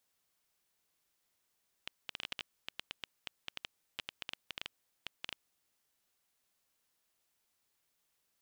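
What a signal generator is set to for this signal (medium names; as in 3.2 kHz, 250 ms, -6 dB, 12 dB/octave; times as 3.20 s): random clicks 8.3 per s -21.5 dBFS 3.84 s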